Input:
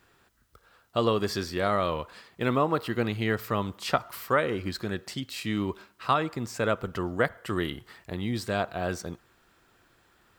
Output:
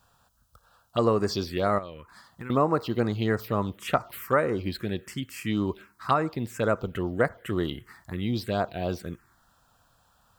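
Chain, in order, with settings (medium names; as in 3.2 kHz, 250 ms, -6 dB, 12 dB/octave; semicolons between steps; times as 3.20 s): 1.78–2.50 s: compression 8:1, threshold -36 dBFS, peak gain reduction 14.5 dB; touch-sensitive phaser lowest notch 350 Hz, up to 3.3 kHz, full sweep at -22.5 dBFS; trim +2.5 dB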